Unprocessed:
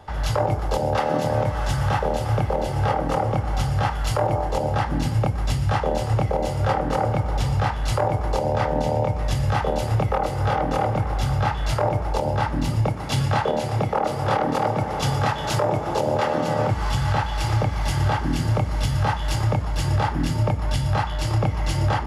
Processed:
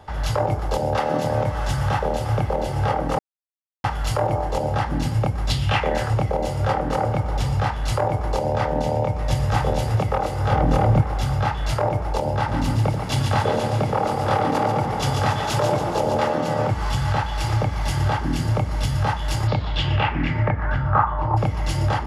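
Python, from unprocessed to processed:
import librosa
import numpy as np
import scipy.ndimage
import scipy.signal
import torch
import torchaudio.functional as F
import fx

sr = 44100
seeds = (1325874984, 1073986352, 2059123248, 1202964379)

y = fx.peak_eq(x, sr, hz=fx.line((5.49, 4200.0), (6.08, 1500.0)), db=14.0, octaves=0.8, at=(5.49, 6.08), fade=0.02)
y = fx.echo_throw(y, sr, start_s=9.05, length_s=0.45, ms=230, feedback_pct=65, wet_db=-4.5)
y = fx.low_shelf(y, sr, hz=230.0, db=11.0, at=(10.51, 11.01))
y = fx.echo_split(y, sr, split_hz=600.0, low_ms=83, high_ms=140, feedback_pct=52, wet_db=-6.0, at=(12.47, 16.31), fade=0.02)
y = fx.lowpass_res(y, sr, hz=fx.line((19.47, 4400.0), (21.36, 910.0)), q=4.9, at=(19.47, 21.36), fade=0.02)
y = fx.edit(y, sr, fx.silence(start_s=3.19, length_s=0.65), tone=tone)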